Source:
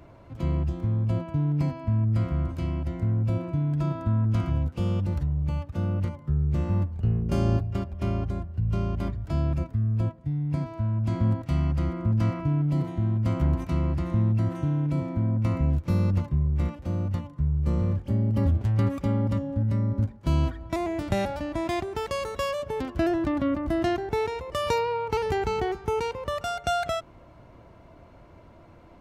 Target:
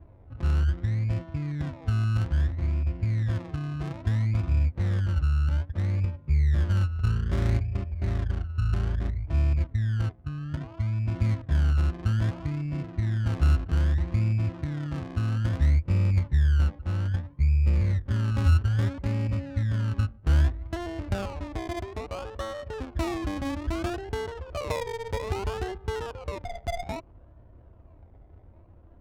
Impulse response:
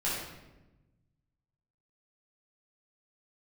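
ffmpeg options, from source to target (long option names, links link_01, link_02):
-af "lowshelf=frequency=110:width_type=q:width=1.5:gain=7.5,acrusher=samples=25:mix=1:aa=0.000001:lfo=1:lforange=15:lforate=0.61,adynamicsmooth=sensitivity=3:basefreq=890,volume=-5dB"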